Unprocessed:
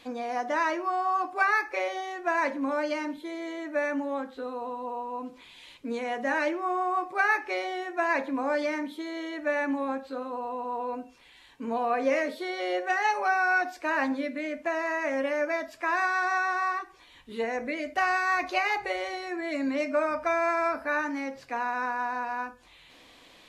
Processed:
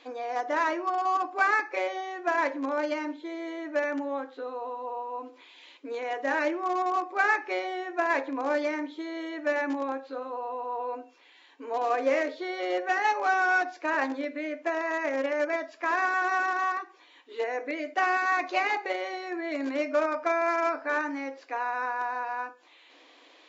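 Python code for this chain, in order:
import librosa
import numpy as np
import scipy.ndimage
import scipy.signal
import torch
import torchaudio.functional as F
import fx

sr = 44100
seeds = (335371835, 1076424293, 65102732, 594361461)

p1 = fx.high_shelf(x, sr, hz=4400.0, db=-6.5)
p2 = fx.schmitt(p1, sr, flips_db=-23.5)
p3 = p1 + (p2 * 10.0 ** (-8.5 / 20.0))
y = fx.brickwall_bandpass(p3, sr, low_hz=260.0, high_hz=7500.0)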